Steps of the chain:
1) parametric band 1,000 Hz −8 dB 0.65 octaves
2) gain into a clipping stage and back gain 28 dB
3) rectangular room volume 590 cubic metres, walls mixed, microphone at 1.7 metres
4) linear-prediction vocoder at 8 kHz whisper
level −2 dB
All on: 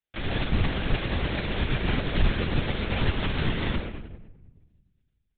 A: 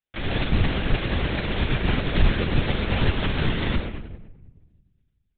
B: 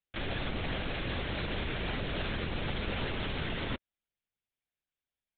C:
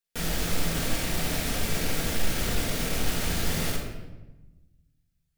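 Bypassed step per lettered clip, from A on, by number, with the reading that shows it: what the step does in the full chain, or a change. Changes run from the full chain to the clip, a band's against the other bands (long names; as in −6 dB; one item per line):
2, distortion level −9 dB
3, change in momentary loudness spread −4 LU
4, 125 Hz band −3.5 dB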